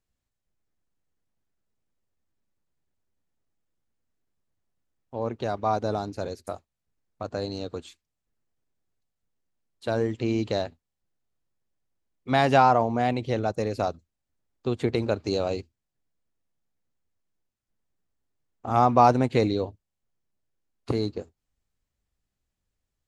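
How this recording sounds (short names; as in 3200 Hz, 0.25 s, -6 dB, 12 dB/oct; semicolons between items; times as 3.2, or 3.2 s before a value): noise floor -84 dBFS; spectral tilt -5.5 dB/oct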